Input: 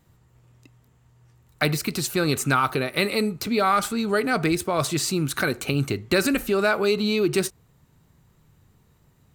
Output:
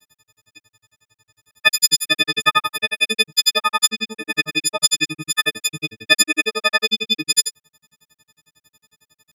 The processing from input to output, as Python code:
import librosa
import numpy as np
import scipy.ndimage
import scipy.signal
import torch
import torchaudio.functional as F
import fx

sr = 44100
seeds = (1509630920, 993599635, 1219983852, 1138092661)

y = fx.freq_snap(x, sr, grid_st=6)
y = fx.weighting(y, sr, curve='D')
y = fx.granulator(y, sr, seeds[0], grain_ms=59.0, per_s=11.0, spray_ms=100.0, spread_st=0)
y = fx.quant_dither(y, sr, seeds[1], bits=12, dither='none')
y = y * 10.0 ** (-1.0 / 20.0)